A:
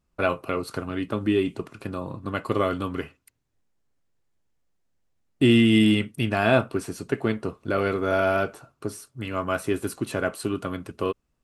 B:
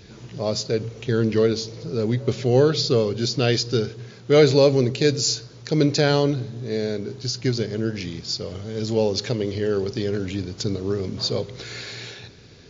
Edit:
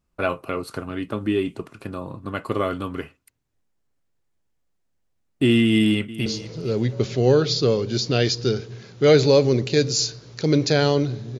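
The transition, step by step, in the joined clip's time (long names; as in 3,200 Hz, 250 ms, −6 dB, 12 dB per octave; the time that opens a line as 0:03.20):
A
0:05.62–0:06.26: delay throw 460 ms, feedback 20%, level −16.5 dB
0:06.26: continue with B from 0:01.54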